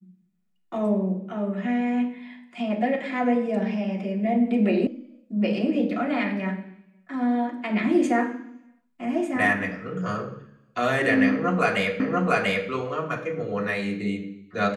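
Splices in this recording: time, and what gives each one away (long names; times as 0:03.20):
0:04.87: cut off before it has died away
0:12.00: the same again, the last 0.69 s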